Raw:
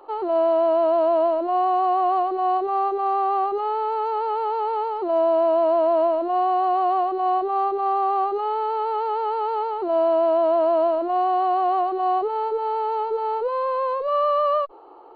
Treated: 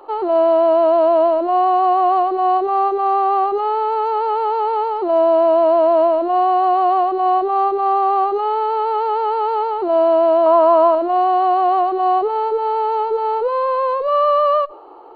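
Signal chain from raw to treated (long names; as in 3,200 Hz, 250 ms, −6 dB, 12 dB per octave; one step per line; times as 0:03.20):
0:10.46–0:10.95: parametric band 1,100 Hz +15 dB 0.33 octaves
convolution reverb RT60 0.55 s, pre-delay 87 ms, DRR 26.5 dB
level +5.5 dB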